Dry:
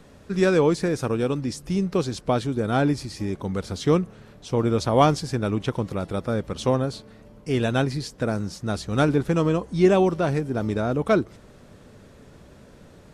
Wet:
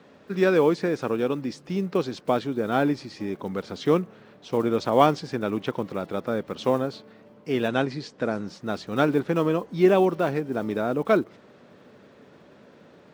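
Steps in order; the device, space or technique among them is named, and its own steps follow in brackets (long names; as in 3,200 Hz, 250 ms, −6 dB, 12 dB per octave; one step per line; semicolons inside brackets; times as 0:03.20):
early digital voice recorder (band-pass filter 210–3,900 Hz; one scale factor per block 7 bits)
0:07.68–0:08.48: low-pass filter 9,000 Hz 24 dB per octave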